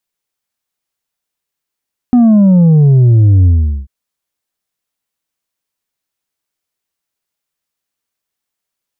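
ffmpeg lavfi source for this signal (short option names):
-f lavfi -i "aevalsrc='0.596*clip((1.74-t)/0.41,0,1)*tanh(1.58*sin(2*PI*250*1.74/log(65/250)*(exp(log(65/250)*t/1.74)-1)))/tanh(1.58)':d=1.74:s=44100"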